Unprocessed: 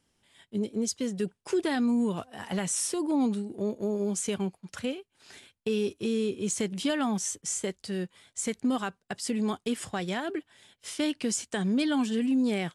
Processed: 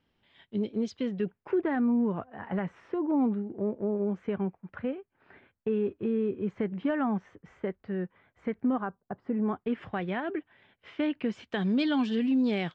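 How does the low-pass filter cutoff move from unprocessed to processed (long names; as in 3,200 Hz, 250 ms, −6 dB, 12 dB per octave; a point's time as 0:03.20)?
low-pass filter 24 dB per octave
0:00.90 3,700 Hz
0:01.63 1,900 Hz
0:08.71 1,900 Hz
0:09.02 1,100 Hz
0:09.84 2,500 Hz
0:11.26 2,500 Hz
0:11.68 4,400 Hz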